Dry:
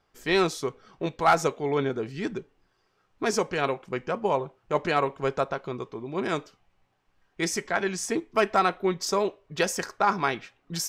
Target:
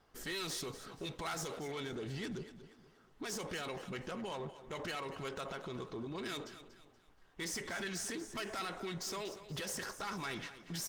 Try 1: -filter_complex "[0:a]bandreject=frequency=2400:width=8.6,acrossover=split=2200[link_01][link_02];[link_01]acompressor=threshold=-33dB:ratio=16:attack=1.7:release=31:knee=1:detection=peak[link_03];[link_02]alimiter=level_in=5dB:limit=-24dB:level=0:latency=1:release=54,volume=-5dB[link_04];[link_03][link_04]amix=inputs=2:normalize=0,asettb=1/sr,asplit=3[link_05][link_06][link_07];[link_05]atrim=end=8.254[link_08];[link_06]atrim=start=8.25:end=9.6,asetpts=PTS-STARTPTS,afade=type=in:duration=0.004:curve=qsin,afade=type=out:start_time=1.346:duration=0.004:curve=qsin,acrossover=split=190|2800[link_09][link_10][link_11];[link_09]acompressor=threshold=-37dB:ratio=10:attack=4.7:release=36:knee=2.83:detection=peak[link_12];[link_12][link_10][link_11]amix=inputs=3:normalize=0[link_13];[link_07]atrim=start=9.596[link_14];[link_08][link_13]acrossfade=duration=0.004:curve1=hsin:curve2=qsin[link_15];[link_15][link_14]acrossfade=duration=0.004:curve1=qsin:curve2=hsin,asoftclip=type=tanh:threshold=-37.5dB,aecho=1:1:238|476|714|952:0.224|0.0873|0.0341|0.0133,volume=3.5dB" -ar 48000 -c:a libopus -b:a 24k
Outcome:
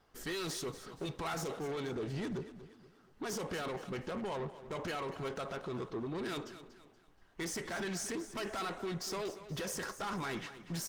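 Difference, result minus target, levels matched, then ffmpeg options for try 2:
downward compressor: peak gain reduction −7 dB
-filter_complex "[0:a]bandreject=frequency=2400:width=8.6,acrossover=split=2200[link_01][link_02];[link_01]acompressor=threshold=-40.5dB:ratio=16:attack=1.7:release=31:knee=1:detection=peak[link_03];[link_02]alimiter=level_in=5dB:limit=-24dB:level=0:latency=1:release=54,volume=-5dB[link_04];[link_03][link_04]amix=inputs=2:normalize=0,asettb=1/sr,asplit=3[link_05][link_06][link_07];[link_05]atrim=end=8.254[link_08];[link_06]atrim=start=8.25:end=9.6,asetpts=PTS-STARTPTS,afade=type=in:duration=0.004:curve=qsin,afade=type=out:start_time=1.346:duration=0.004:curve=qsin,acrossover=split=190|2800[link_09][link_10][link_11];[link_09]acompressor=threshold=-37dB:ratio=10:attack=4.7:release=36:knee=2.83:detection=peak[link_12];[link_12][link_10][link_11]amix=inputs=3:normalize=0[link_13];[link_07]atrim=start=9.596[link_14];[link_08][link_13]acrossfade=duration=0.004:curve1=hsin:curve2=qsin[link_15];[link_15][link_14]acrossfade=duration=0.004:curve1=qsin:curve2=hsin,asoftclip=type=tanh:threshold=-37.5dB,aecho=1:1:238|476|714|952:0.224|0.0873|0.0341|0.0133,volume=3.5dB" -ar 48000 -c:a libopus -b:a 24k

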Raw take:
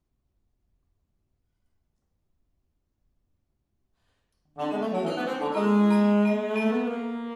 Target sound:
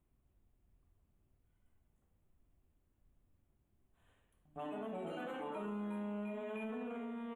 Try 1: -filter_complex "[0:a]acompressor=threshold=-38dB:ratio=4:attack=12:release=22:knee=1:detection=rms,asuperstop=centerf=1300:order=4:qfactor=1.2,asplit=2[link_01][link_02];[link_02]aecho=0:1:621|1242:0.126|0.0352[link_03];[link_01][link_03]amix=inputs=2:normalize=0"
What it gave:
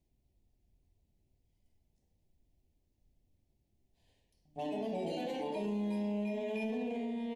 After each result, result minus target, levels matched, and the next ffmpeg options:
downward compressor: peak gain reduction −6.5 dB; 4,000 Hz band +3.5 dB
-filter_complex "[0:a]acompressor=threshold=-46.5dB:ratio=4:attack=12:release=22:knee=1:detection=rms,asuperstop=centerf=1300:order=4:qfactor=1.2,asplit=2[link_01][link_02];[link_02]aecho=0:1:621|1242:0.126|0.0352[link_03];[link_01][link_03]amix=inputs=2:normalize=0"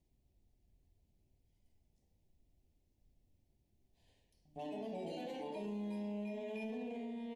4,000 Hz band +3.5 dB
-filter_complex "[0:a]acompressor=threshold=-46.5dB:ratio=4:attack=12:release=22:knee=1:detection=rms,asuperstop=centerf=5000:order=4:qfactor=1.2,asplit=2[link_01][link_02];[link_02]aecho=0:1:621|1242:0.126|0.0352[link_03];[link_01][link_03]amix=inputs=2:normalize=0"

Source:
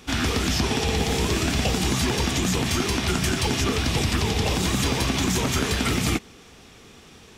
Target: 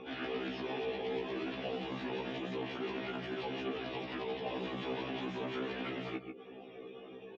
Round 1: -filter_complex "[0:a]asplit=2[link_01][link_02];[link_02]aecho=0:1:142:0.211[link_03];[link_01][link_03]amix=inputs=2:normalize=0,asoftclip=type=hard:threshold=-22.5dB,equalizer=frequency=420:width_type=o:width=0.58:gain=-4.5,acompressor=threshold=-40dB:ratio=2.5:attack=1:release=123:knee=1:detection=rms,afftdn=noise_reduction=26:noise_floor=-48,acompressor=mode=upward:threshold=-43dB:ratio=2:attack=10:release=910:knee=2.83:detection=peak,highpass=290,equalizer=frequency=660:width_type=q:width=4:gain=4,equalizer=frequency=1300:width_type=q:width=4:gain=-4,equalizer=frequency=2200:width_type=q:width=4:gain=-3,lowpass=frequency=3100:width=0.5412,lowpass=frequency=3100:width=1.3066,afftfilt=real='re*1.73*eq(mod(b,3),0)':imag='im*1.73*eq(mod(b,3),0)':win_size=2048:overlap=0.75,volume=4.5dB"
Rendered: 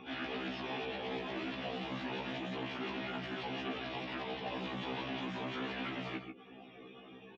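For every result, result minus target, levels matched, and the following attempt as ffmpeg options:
hard clipping: distortion +17 dB; 500 Hz band −3.5 dB
-filter_complex "[0:a]asplit=2[link_01][link_02];[link_02]aecho=0:1:142:0.211[link_03];[link_01][link_03]amix=inputs=2:normalize=0,asoftclip=type=hard:threshold=-15.5dB,equalizer=frequency=420:width_type=o:width=0.58:gain=-4.5,acompressor=threshold=-40dB:ratio=2.5:attack=1:release=123:knee=1:detection=rms,afftdn=noise_reduction=26:noise_floor=-48,acompressor=mode=upward:threshold=-43dB:ratio=2:attack=10:release=910:knee=2.83:detection=peak,highpass=290,equalizer=frequency=660:width_type=q:width=4:gain=4,equalizer=frequency=1300:width_type=q:width=4:gain=-4,equalizer=frequency=2200:width_type=q:width=4:gain=-3,lowpass=frequency=3100:width=0.5412,lowpass=frequency=3100:width=1.3066,afftfilt=real='re*1.73*eq(mod(b,3),0)':imag='im*1.73*eq(mod(b,3),0)':win_size=2048:overlap=0.75,volume=4.5dB"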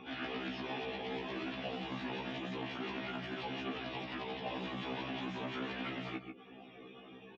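500 Hz band −4.0 dB
-filter_complex "[0:a]asplit=2[link_01][link_02];[link_02]aecho=0:1:142:0.211[link_03];[link_01][link_03]amix=inputs=2:normalize=0,asoftclip=type=hard:threshold=-15.5dB,equalizer=frequency=420:width_type=o:width=0.58:gain=4,acompressor=threshold=-40dB:ratio=2.5:attack=1:release=123:knee=1:detection=rms,afftdn=noise_reduction=26:noise_floor=-48,acompressor=mode=upward:threshold=-43dB:ratio=2:attack=10:release=910:knee=2.83:detection=peak,highpass=290,equalizer=frequency=660:width_type=q:width=4:gain=4,equalizer=frequency=1300:width_type=q:width=4:gain=-4,equalizer=frequency=2200:width_type=q:width=4:gain=-3,lowpass=frequency=3100:width=0.5412,lowpass=frequency=3100:width=1.3066,afftfilt=real='re*1.73*eq(mod(b,3),0)':imag='im*1.73*eq(mod(b,3),0)':win_size=2048:overlap=0.75,volume=4.5dB"

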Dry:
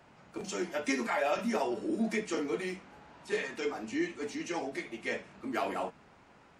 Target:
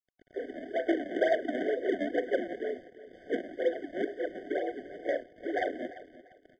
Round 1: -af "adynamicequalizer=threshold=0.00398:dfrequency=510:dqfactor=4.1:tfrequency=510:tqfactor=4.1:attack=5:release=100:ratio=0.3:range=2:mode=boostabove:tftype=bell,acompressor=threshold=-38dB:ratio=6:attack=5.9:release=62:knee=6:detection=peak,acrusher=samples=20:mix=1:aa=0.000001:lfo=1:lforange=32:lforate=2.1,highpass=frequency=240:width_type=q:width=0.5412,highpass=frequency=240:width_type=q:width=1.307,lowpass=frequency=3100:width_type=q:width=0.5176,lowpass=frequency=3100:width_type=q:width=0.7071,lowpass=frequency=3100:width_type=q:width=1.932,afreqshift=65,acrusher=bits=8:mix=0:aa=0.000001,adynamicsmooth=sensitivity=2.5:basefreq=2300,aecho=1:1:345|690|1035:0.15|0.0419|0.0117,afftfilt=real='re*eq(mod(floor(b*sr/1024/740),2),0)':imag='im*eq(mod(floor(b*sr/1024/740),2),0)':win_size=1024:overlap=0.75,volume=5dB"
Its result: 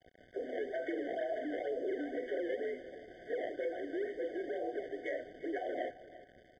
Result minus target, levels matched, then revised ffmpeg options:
downward compressor: peak gain reduction +13 dB; sample-and-hold swept by an LFO: distortion −14 dB
-af "adynamicequalizer=threshold=0.00398:dfrequency=510:dqfactor=4.1:tfrequency=510:tqfactor=4.1:attack=5:release=100:ratio=0.3:range=2:mode=boostabove:tftype=bell,acrusher=samples=67:mix=1:aa=0.000001:lfo=1:lforange=107:lforate=2.1,highpass=frequency=240:width_type=q:width=0.5412,highpass=frequency=240:width_type=q:width=1.307,lowpass=frequency=3100:width_type=q:width=0.5176,lowpass=frequency=3100:width_type=q:width=0.7071,lowpass=frequency=3100:width_type=q:width=1.932,afreqshift=65,acrusher=bits=8:mix=0:aa=0.000001,adynamicsmooth=sensitivity=2.5:basefreq=2300,aecho=1:1:345|690|1035:0.15|0.0419|0.0117,afftfilt=real='re*eq(mod(floor(b*sr/1024/740),2),0)':imag='im*eq(mod(floor(b*sr/1024/740),2),0)':win_size=1024:overlap=0.75,volume=5dB"

